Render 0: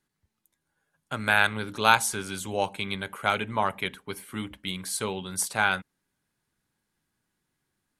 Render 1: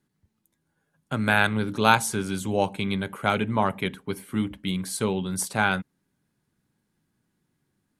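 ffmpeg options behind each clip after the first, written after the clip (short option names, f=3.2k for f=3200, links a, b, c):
-af "equalizer=f=180:t=o:w=2.9:g=10.5,volume=-1dB"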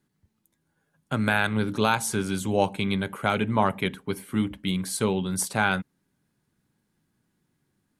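-af "alimiter=limit=-9dB:level=0:latency=1:release=171,volume=1dB"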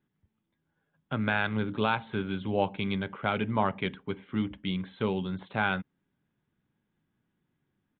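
-af "aresample=8000,aresample=44100,volume=-4.5dB"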